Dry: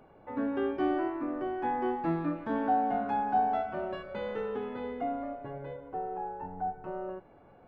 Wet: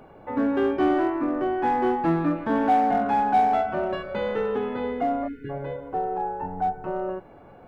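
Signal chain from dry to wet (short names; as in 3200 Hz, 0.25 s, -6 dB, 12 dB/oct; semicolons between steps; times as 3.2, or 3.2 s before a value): spectral delete 5.28–5.5, 490–1400 Hz; in parallel at -4 dB: overloaded stage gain 28.5 dB; on the sum: gain +4.5 dB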